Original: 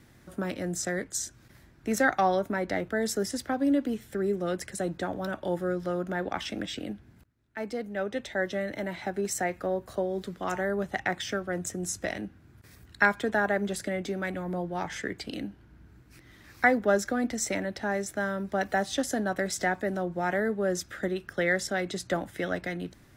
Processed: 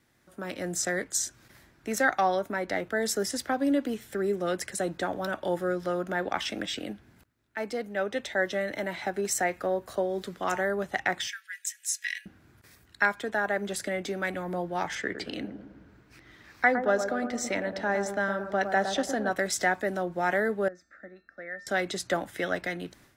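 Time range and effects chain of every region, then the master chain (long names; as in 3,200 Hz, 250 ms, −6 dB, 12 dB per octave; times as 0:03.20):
0:11.27–0:12.26: Chebyshev high-pass filter 1,700 Hz, order 5 + comb filter 3.6 ms, depth 41%
0:14.95–0:19.31: parametric band 12,000 Hz −11 dB 1.3 octaves + bucket-brigade delay 111 ms, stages 1,024, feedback 51%, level −7 dB
0:20.68–0:21.67: high-frequency loss of the air 240 metres + phaser with its sweep stopped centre 630 Hz, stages 8 + tuned comb filter 450 Hz, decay 0.49 s, mix 80%
whole clip: automatic gain control gain up to 12 dB; low-shelf EQ 280 Hz −9.5 dB; level −8 dB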